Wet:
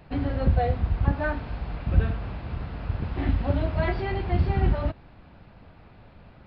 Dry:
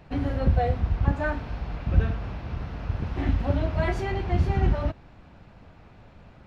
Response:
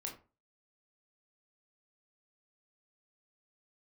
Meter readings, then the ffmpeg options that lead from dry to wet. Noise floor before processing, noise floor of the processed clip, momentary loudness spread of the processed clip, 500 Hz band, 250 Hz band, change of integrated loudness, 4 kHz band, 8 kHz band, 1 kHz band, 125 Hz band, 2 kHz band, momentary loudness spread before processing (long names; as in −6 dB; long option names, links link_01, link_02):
−51 dBFS, −51 dBFS, 10 LU, 0.0 dB, 0.0 dB, 0.0 dB, 0.0 dB, can't be measured, 0.0 dB, 0.0 dB, 0.0 dB, 10 LU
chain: -af "aresample=11025,aresample=44100"